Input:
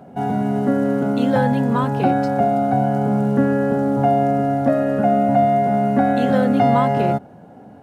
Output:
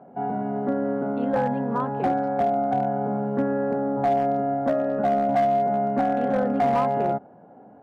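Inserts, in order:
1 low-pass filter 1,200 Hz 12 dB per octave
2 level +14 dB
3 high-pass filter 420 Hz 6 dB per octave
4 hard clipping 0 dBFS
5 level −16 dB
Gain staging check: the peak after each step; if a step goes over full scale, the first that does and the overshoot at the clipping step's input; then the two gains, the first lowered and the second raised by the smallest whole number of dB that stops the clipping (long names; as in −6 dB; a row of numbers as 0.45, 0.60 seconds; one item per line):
−4.5, +9.5, +6.0, 0.0, −16.0 dBFS
step 2, 6.0 dB
step 2 +8 dB, step 5 −10 dB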